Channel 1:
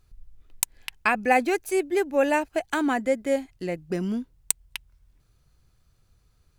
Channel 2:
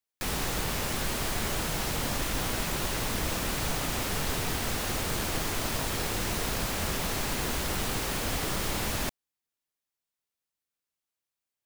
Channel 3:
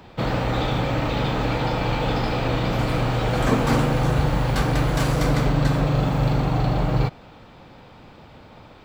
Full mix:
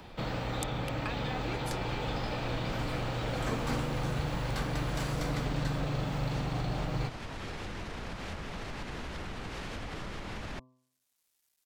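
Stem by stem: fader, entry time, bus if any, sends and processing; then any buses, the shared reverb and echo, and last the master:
-13.5 dB, 0.00 s, bus A, no send, dry
-3.0 dB, 1.50 s, bus A, no send, tone controls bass +3 dB, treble +2 dB; companded quantiser 8-bit
-12.5 dB, 0.00 s, no bus, no send, high shelf 6700 Hz -8 dB
bus A: 0.0 dB, treble ducked by the level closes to 2200 Hz, closed at -27.5 dBFS; compressor, threshold -40 dBFS, peak gain reduction 12.5 dB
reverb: off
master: high shelf 3300 Hz +9 dB; de-hum 128.1 Hz, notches 9; three-band squash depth 40%

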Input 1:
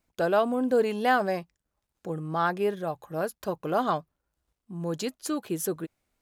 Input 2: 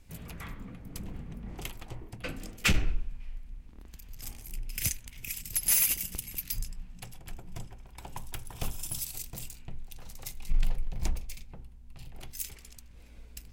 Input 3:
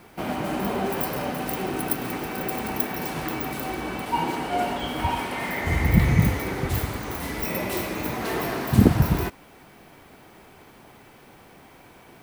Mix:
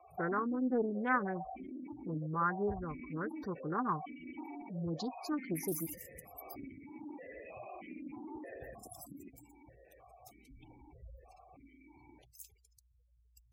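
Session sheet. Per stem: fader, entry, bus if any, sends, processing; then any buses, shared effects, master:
-3.5 dB, 0.00 s, no send, fixed phaser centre 2500 Hz, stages 6
-13.5 dB, 0.00 s, no send, HPF 56 Hz 24 dB/oct; fixed phaser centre 560 Hz, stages 4
+0.5 dB, 0.00 s, no send, compressor 8:1, threshold -32 dBFS, peak gain reduction 22 dB; vowel sequencer 3.2 Hz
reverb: off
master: spectral gate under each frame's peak -15 dB strong; Doppler distortion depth 0.24 ms

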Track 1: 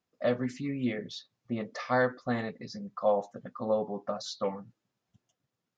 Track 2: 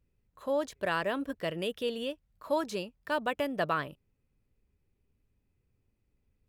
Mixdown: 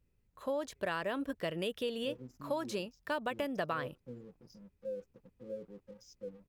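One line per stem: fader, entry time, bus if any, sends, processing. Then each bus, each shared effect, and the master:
-13.5 dB, 1.80 s, no send, FFT band-reject 550–4700 Hz; comb 6.1 ms, depth 39%; crossover distortion -51.5 dBFS
-0.5 dB, 0.00 s, no send, dry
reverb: off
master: compressor, threshold -31 dBFS, peak gain reduction 7 dB

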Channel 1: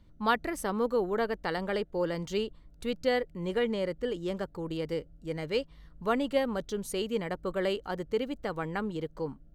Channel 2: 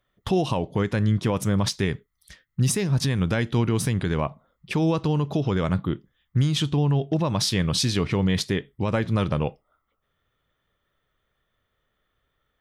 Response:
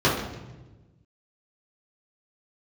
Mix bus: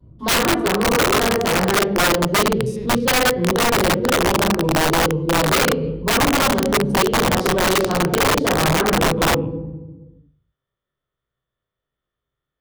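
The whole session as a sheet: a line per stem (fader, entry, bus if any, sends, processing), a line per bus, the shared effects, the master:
-0.5 dB, 0.00 s, send -6.5 dB, Wiener smoothing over 25 samples; vibrato 1 Hz 41 cents
-15.0 dB, 0.00 s, send -22 dB, stepped spectrum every 0.1 s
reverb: on, RT60 1.2 s, pre-delay 3 ms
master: vocal rider within 5 dB 0.5 s; wrapped overs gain 11 dB

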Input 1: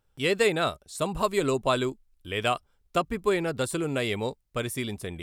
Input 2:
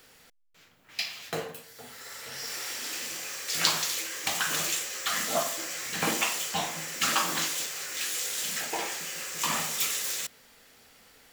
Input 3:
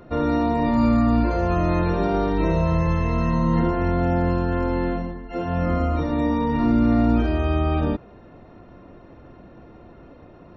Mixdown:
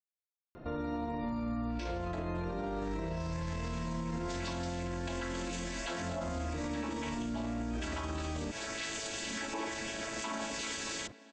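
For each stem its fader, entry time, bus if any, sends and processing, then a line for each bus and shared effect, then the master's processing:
off
+1.5 dB, 0.80 s, bus A, no send, chord vocoder major triad, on A3
-4.0 dB, 0.55 s, bus A, no send, dry
bus A: 0.0 dB, compressor, threshold -26 dBFS, peak gain reduction 10.5 dB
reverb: off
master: limiter -29 dBFS, peak gain reduction 11 dB

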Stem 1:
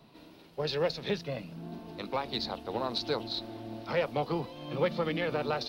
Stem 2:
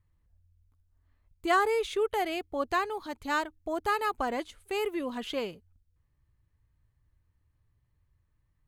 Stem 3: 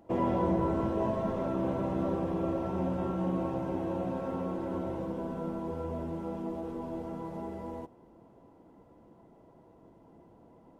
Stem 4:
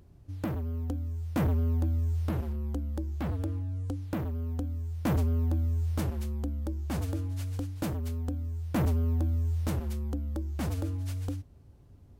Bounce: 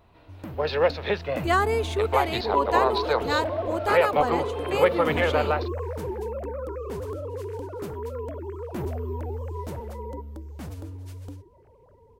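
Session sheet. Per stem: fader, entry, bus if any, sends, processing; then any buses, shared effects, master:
+2.0 dB, 0.00 s, no send, three-band isolator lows -14 dB, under 440 Hz, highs -17 dB, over 2700 Hz; AGC gain up to 9.5 dB
+2.5 dB, 0.00 s, no send, dry
+0.5 dB, 2.35 s, no send, sine-wave speech
-5.5 dB, 0.00 s, no send, dry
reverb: off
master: dry

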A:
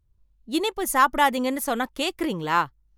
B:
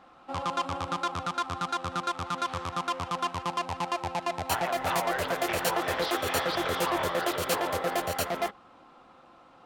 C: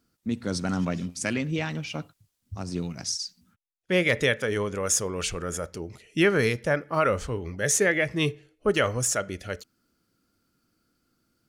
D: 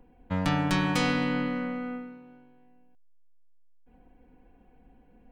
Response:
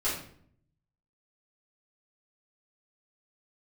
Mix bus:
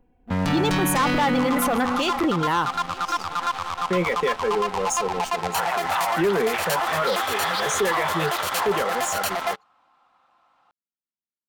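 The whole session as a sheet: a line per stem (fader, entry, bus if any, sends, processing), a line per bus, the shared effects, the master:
0.0 dB, 0.00 s, no send, echo send -24 dB, spectral gate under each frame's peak -25 dB strong
-1.5 dB, 1.05 s, no send, no echo send, resonant low shelf 610 Hz -9.5 dB, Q 1.5
-2.0 dB, 0.00 s, no send, no echo send, elliptic high-pass 160 Hz; notch comb 300 Hz; spectral expander 1.5:1; auto duck -19 dB, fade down 0.45 s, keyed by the first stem
+1.0 dB, 0.00 s, no send, no echo send, dry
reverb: off
echo: echo 0.886 s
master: sample leveller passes 3; limiter -15.5 dBFS, peak gain reduction 10.5 dB

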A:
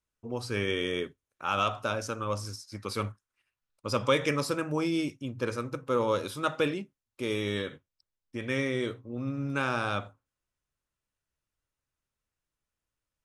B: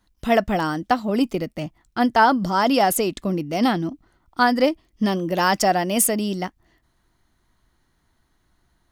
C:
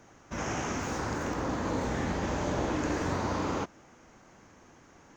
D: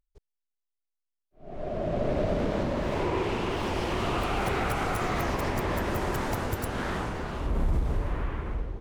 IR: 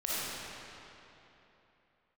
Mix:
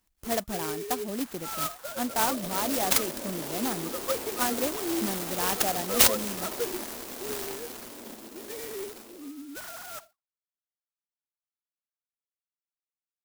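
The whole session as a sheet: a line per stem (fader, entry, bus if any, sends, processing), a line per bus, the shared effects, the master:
-6.5 dB, 0.00 s, no send, sine-wave speech
+1.5 dB, 0.00 s, no send, pre-emphasis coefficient 0.8
-10.0 dB, 0.80 s, no send, HPF 1300 Hz 12 dB/oct
-8.0 dB, 0.50 s, no send, steep high-pass 210 Hz 72 dB/oct; bell 1700 Hz +13 dB 0.49 oct; noise-modulated delay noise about 4300 Hz, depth 0.18 ms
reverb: off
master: clock jitter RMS 0.11 ms

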